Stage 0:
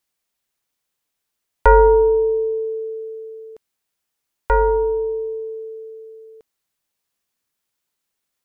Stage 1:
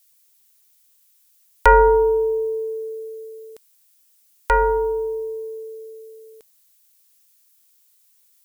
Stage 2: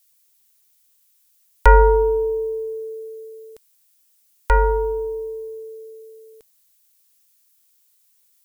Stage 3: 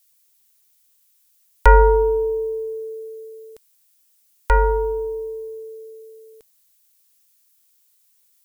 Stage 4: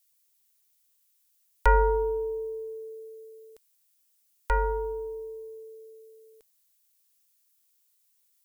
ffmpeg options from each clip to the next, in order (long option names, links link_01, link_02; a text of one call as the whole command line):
ffmpeg -i in.wav -af "crystalizer=i=10:c=0,volume=-4dB" out.wav
ffmpeg -i in.wav -af "lowshelf=frequency=120:gain=12,volume=-2dB" out.wav
ffmpeg -i in.wav -af anull out.wav
ffmpeg -i in.wav -af "equalizer=frequency=130:width_type=o:width=2.3:gain=-6,volume=-8dB" out.wav